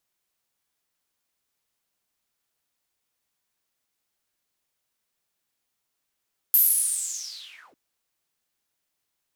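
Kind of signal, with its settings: swept filtered noise white, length 1.20 s bandpass, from 13000 Hz, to 240 Hz, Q 9.7, linear, gain ramp -31 dB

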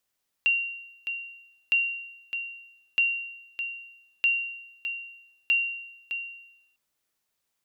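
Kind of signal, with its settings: sonar ping 2760 Hz, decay 0.88 s, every 1.26 s, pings 5, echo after 0.61 s, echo -9 dB -16.5 dBFS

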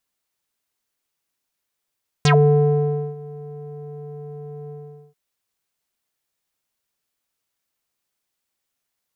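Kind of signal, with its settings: synth note square D3 12 dB/oct, low-pass 530 Hz, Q 5.8, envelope 4 oct, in 0.10 s, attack 1.3 ms, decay 0.90 s, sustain -23 dB, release 0.44 s, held 2.45 s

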